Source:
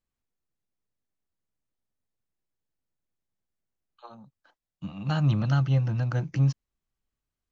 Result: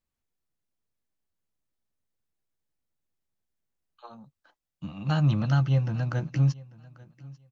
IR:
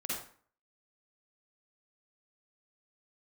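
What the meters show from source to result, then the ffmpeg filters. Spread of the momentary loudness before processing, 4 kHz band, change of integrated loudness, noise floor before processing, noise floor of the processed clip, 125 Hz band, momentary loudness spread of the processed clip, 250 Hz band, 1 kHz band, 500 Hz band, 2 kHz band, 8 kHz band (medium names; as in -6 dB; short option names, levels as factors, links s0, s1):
17 LU, +0.5 dB, 0.0 dB, under -85 dBFS, under -85 dBFS, 0.0 dB, 17 LU, +0.5 dB, +0.5 dB, +0.5 dB, +0.5 dB, no reading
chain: -filter_complex "[0:a]asplit=2[s0][s1];[s1]adelay=13,volume=0.224[s2];[s0][s2]amix=inputs=2:normalize=0,aecho=1:1:843|1686:0.0794|0.0151"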